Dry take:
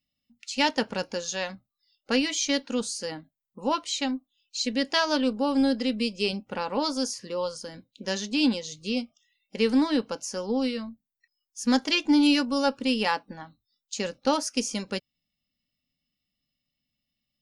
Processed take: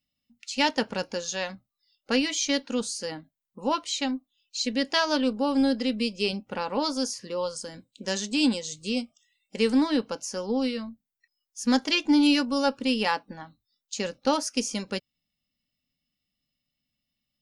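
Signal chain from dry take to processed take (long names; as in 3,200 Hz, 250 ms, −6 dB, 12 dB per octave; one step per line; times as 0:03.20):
0:07.56–0:09.72: parametric band 8,000 Hz +14.5 dB 0.3 octaves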